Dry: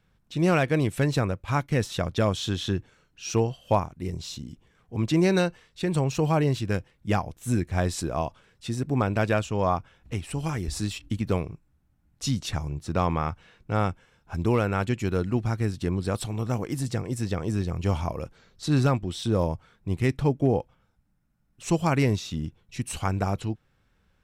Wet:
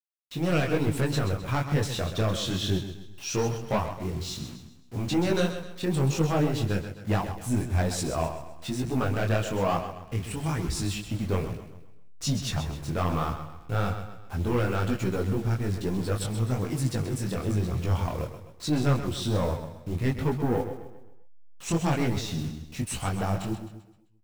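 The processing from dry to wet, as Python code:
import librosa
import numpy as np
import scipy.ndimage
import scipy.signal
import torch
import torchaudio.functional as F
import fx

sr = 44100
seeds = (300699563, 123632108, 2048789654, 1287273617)

y = fx.delta_hold(x, sr, step_db=-43.0)
y = 10.0 ** (-21.5 / 20.0) * np.tanh(y / 10.0 ** (-21.5 / 20.0))
y = fx.echo_feedback(y, sr, ms=130, feedback_pct=42, wet_db=-9.5)
y = fx.detune_double(y, sr, cents=39)
y = y * librosa.db_to_amplitude(5.0)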